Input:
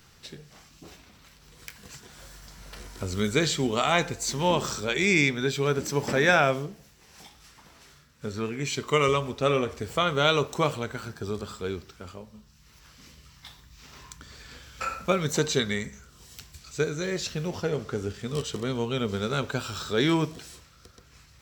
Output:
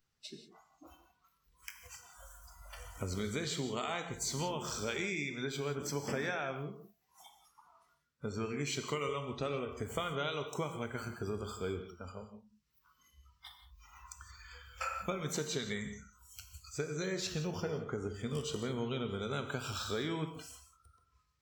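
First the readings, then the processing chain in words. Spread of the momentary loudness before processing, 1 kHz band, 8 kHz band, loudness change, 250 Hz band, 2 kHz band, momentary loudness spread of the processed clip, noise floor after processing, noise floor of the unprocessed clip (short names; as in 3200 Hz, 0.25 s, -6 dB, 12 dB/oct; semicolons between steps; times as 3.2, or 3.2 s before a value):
23 LU, -12.0 dB, -7.5 dB, -11.5 dB, -10.5 dB, -13.0 dB, 16 LU, -76 dBFS, -56 dBFS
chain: compressor 16:1, threshold -29 dBFS, peak gain reduction 14.5 dB; spectral noise reduction 23 dB; non-linear reverb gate 0.2 s flat, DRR 7 dB; gain -4 dB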